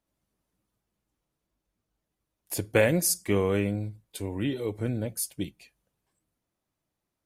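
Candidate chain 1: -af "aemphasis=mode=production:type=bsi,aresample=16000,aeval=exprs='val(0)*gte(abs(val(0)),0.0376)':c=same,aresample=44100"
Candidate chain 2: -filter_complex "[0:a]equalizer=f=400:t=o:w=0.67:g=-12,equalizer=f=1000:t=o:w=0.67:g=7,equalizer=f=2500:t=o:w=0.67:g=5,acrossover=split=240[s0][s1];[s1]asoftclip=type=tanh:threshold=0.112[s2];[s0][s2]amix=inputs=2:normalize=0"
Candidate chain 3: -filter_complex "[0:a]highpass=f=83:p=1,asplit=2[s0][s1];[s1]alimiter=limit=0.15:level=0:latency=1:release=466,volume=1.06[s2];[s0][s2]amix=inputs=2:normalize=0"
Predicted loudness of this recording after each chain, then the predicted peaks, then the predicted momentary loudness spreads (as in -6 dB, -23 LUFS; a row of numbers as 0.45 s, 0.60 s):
-29.5 LUFS, -30.5 LUFS, -24.0 LUFS; -7.5 dBFS, -16.0 dBFS, -5.5 dBFS; 20 LU, 13 LU, 12 LU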